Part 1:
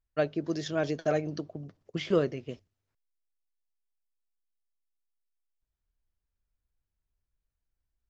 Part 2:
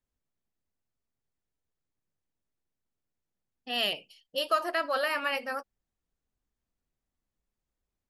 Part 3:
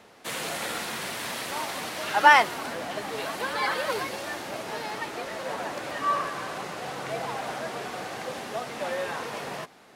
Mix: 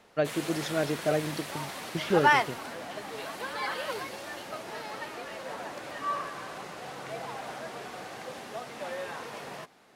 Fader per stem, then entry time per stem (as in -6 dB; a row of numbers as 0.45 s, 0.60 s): +0.5 dB, -17.5 dB, -6.0 dB; 0.00 s, 0.00 s, 0.00 s